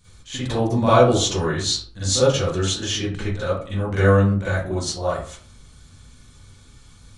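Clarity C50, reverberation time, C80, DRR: -2.5 dB, 0.50 s, 6.0 dB, -12.5 dB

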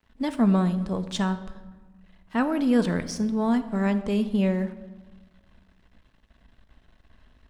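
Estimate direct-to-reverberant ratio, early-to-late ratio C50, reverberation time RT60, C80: 9.5 dB, 13.0 dB, 1.3 s, 14.5 dB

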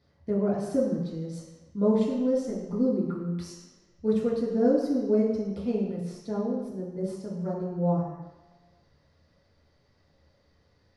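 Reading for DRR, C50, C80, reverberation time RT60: -8.5 dB, 1.5 dB, 4.5 dB, 1.1 s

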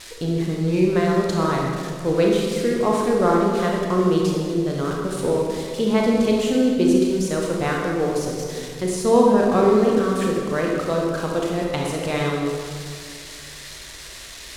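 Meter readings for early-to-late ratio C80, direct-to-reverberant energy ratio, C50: 2.0 dB, -1.5 dB, 0.0 dB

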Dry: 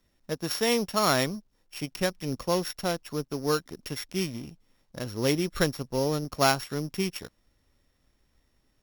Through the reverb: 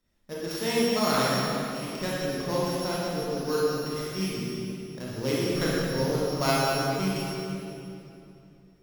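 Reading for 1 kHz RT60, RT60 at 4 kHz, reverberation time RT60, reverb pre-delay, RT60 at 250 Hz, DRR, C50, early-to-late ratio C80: 2.7 s, 2.3 s, 2.9 s, 24 ms, 3.5 s, -7.5 dB, -4.5 dB, -2.0 dB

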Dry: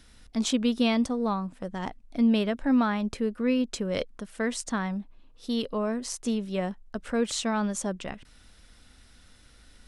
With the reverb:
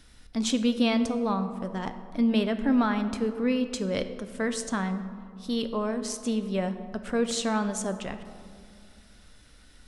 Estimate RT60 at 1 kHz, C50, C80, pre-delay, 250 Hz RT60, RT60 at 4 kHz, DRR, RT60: 2.1 s, 10.5 dB, 11.5 dB, 7 ms, 2.6 s, 1.0 s, 8.5 dB, 2.2 s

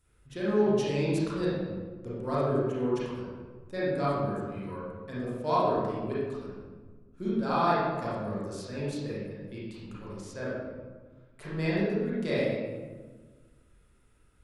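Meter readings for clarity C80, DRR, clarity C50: 0.5 dB, -9.5 dB, -3.0 dB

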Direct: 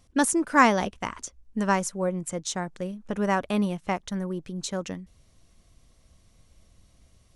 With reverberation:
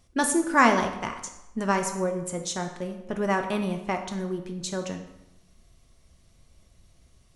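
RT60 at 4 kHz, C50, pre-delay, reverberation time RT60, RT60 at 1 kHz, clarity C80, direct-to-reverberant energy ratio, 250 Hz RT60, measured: 0.70 s, 8.5 dB, 3 ms, 0.90 s, 0.95 s, 10.5 dB, 4.0 dB, 0.90 s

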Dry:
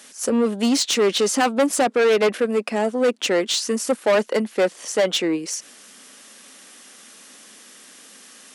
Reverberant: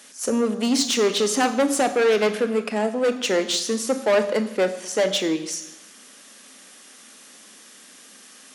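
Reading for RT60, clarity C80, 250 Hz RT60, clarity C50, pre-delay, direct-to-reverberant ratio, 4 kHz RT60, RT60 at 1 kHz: 1.0 s, 13.5 dB, 0.95 s, 12.0 dB, 26 ms, 9.0 dB, 1.0 s, 1.1 s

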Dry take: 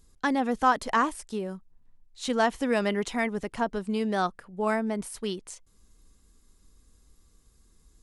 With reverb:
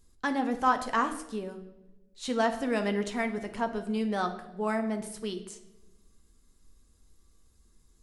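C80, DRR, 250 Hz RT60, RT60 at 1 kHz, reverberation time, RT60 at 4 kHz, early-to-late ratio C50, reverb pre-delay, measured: 13.5 dB, 5.5 dB, 1.4 s, 0.80 s, 1.0 s, 0.75 s, 11.0 dB, 9 ms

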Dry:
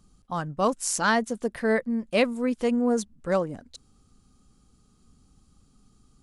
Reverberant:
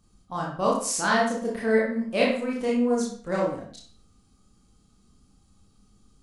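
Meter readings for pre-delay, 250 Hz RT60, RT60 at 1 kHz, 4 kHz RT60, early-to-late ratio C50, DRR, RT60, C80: 25 ms, 0.50 s, 0.55 s, 0.45 s, 2.5 dB, -4.0 dB, 0.55 s, 8.0 dB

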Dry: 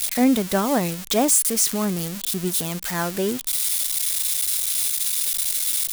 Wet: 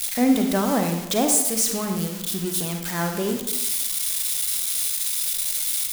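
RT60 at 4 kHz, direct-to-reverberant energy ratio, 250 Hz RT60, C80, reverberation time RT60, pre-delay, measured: 0.65 s, 4.0 dB, 1.0 s, 7.0 dB, 1.0 s, 36 ms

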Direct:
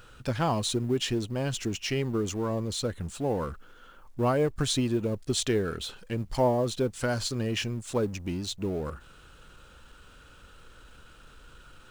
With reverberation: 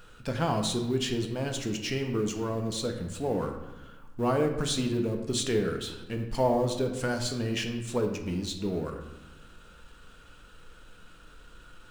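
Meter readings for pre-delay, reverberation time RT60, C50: 4 ms, 1.1 s, 7.5 dB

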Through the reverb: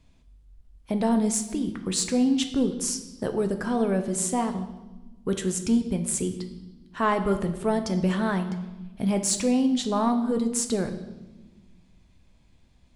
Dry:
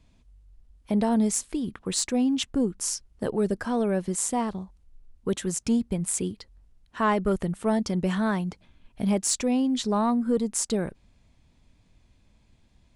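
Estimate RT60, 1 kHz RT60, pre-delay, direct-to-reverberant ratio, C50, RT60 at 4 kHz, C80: 1.2 s, 1.0 s, 8 ms, 6.5 dB, 10.5 dB, 1.1 s, 12.5 dB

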